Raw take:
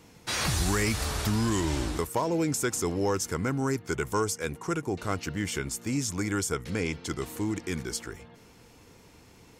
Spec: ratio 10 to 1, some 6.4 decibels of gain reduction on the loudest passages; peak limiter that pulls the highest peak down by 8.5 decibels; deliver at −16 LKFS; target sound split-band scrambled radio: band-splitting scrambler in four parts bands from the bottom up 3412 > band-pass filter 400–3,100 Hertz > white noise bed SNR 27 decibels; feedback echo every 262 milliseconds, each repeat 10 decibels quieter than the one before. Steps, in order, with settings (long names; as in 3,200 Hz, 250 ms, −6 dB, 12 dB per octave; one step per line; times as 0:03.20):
downward compressor 10 to 1, threshold −29 dBFS
brickwall limiter −27.5 dBFS
repeating echo 262 ms, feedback 32%, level −10 dB
band-splitting scrambler in four parts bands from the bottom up 3412
band-pass filter 400–3,100 Hz
white noise bed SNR 27 dB
level +21 dB